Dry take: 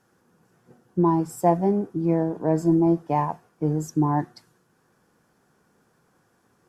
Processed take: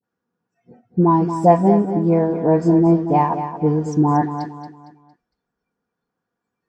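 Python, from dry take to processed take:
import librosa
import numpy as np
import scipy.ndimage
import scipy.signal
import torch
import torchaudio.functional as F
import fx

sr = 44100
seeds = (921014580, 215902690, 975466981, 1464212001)

p1 = scipy.signal.sosfilt(scipy.signal.butter(2, 41.0, 'highpass', fs=sr, output='sos'), x)
p2 = fx.noise_reduce_blind(p1, sr, reduce_db=23)
p3 = scipy.signal.sosfilt(scipy.signal.bessel(4, 4500.0, 'lowpass', norm='mag', fs=sr, output='sos'), p2)
p4 = p3 + 0.3 * np.pad(p3, (int(4.2 * sr / 1000.0), 0))[:len(p3)]
p5 = fx.dispersion(p4, sr, late='highs', ms=40.0, hz=860.0)
p6 = p5 + fx.echo_feedback(p5, sr, ms=229, feedback_pct=36, wet_db=-9.5, dry=0)
y = p6 * 10.0 ** (6.5 / 20.0)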